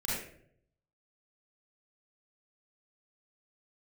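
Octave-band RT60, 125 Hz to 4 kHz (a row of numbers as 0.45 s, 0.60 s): 1.1 s, 0.80 s, 0.75 s, 0.50 s, 0.55 s, 0.40 s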